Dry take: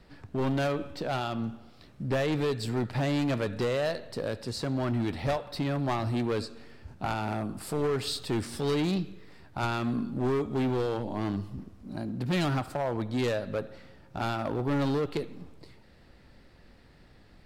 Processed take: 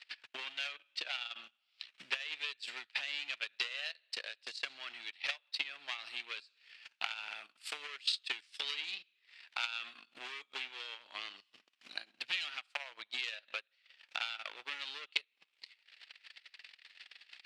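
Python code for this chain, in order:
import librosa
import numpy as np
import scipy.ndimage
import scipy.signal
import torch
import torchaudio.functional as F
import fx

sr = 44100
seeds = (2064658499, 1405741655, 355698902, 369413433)

p1 = fx.transient(x, sr, attack_db=7, sustain_db=-9)
p2 = fx.level_steps(p1, sr, step_db=11)
p3 = p1 + F.gain(torch.from_numpy(p2), -2.0).numpy()
p4 = fx.transient(p3, sr, attack_db=9, sustain_db=-10)
p5 = fx.ladder_bandpass(p4, sr, hz=3200.0, resonance_pct=45)
p6 = fx.band_squash(p5, sr, depth_pct=40)
y = F.gain(torch.from_numpy(p6), 6.5).numpy()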